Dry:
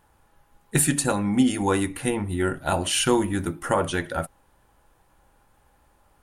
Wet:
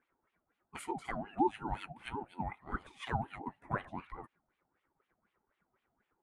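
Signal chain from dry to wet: wah-wah 4 Hz 220–2500 Hz, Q 3.2; ring modulator with a swept carrier 530 Hz, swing 20%, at 5.5 Hz; trim -4.5 dB

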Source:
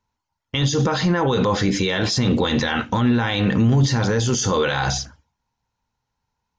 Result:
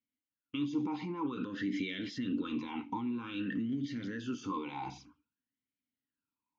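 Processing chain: compression, threshold -19 dBFS, peak gain reduction 7 dB; talking filter i-u 0.52 Hz; trim -1.5 dB

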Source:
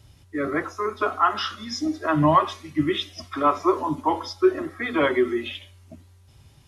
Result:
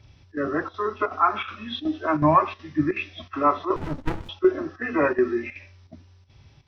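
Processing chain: knee-point frequency compression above 1.4 kHz 1.5:1; square tremolo 2.7 Hz, depth 65%, duty 85%; 3.76–4.29 s: sliding maximum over 65 samples

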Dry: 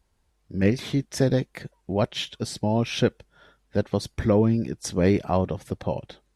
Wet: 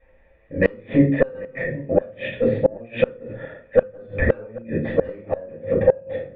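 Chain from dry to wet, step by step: cascade formant filter e; in parallel at -9 dB: sine folder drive 9 dB, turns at -15.5 dBFS; on the sum: simulated room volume 290 m³, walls furnished, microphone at 6.2 m; inverted gate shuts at -10 dBFS, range -30 dB; on a send: filtered feedback delay 789 ms, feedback 33%, low-pass 1.2 kHz, level -20.5 dB; on the sum: tape noise reduction on one side only encoder only; trim +6.5 dB

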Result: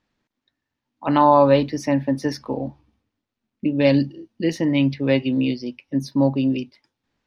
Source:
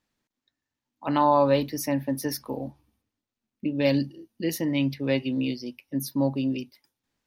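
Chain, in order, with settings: distance through air 120 m; trim +6.5 dB

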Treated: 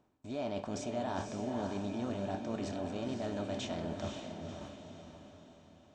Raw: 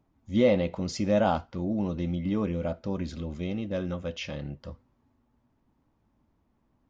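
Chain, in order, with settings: spectral levelling over time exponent 0.6; gate with hold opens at -37 dBFS; reverse; compression 6:1, threshold -35 dBFS, peak gain reduction 18 dB; reverse; tape speed +16%; echo that smears into a reverb 514 ms, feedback 47%, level -5 dB; trim -1 dB

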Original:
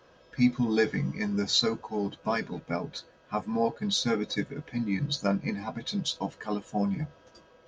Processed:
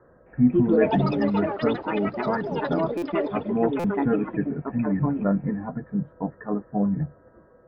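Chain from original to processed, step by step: rippled Chebyshev low-pass 1.9 kHz, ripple 3 dB; bass shelf 390 Hz +9.5 dB; ever faster or slower copies 263 ms, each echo +6 st, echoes 3; buffer glitch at 2.97/3.79 s, samples 256, times 8

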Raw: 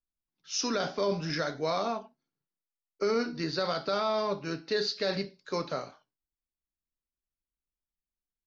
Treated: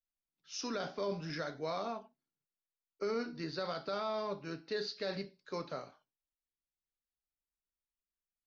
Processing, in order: distance through air 58 m; trim -7.5 dB

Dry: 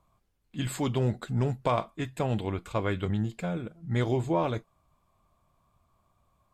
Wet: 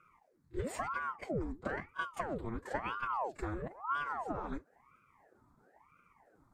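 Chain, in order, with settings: compression 16:1, threshold -34 dBFS, peak gain reduction 14 dB; formant-preserving pitch shift +3 st; treble shelf 7.5 kHz -11.5 dB; static phaser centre 1.2 kHz, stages 4; pre-echo 30 ms -15.5 dB; ring modulator with a swept carrier 710 Hz, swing 85%, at 1 Hz; trim +6.5 dB

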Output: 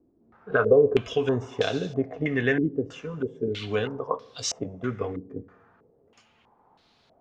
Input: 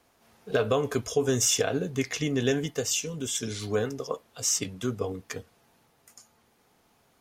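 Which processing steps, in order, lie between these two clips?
Schroeder reverb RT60 1.2 s, combs from 33 ms, DRR 16.5 dB; step-sequenced low-pass 3.1 Hz 320–4100 Hz

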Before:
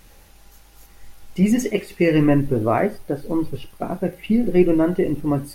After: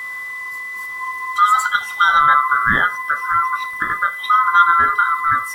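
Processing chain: split-band scrambler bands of 1 kHz; in parallel at +1 dB: compression, threshold -29 dBFS, peak gain reduction 18 dB; on the sum: whistle 2 kHz -27 dBFS; trim +1 dB

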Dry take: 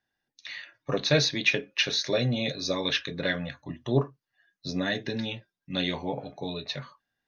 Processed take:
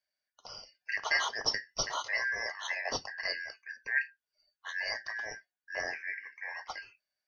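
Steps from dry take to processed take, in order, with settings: four frequency bands reordered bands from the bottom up 3142; 5.07–6.45 s: peaking EQ 4.5 kHz -10 dB 0.3 oct; trim -7 dB

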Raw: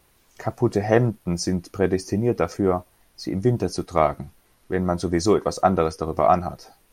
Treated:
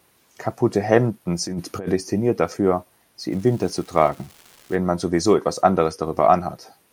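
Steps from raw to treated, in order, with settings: high-pass 120 Hz 12 dB/octave; 1.47–1.92 s: compressor with a negative ratio -29 dBFS, ratio -1; 3.30–4.75 s: crackle 590 per s -38 dBFS; trim +2 dB

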